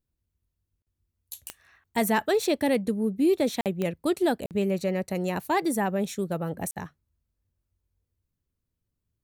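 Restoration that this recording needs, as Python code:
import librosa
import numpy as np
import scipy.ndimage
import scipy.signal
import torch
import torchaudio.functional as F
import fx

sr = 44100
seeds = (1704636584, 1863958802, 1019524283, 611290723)

y = fx.fix_declip(x, sr, threshold_db=-15.0)
y = fx.fix_declick_ar(y, sr, threshold=10.0)
y = fx.fix_interpolate(y, sr, at_s=(0.82, 3.61, 4.46, 6.71), length_ms=48.0)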